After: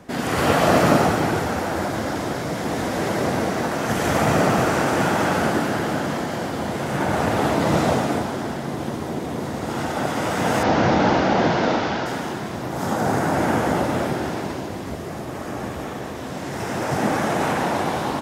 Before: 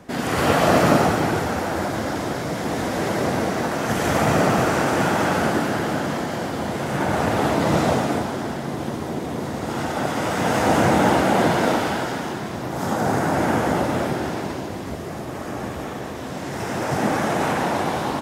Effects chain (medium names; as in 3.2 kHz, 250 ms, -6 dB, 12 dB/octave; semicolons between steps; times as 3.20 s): 10.63–12.06 s: CVSD coder 32 kbps